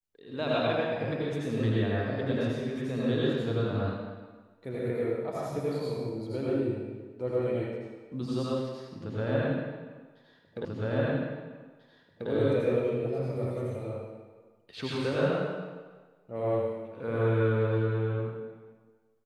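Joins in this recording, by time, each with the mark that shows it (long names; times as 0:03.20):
0:10.65: the same again, the last 1.64 s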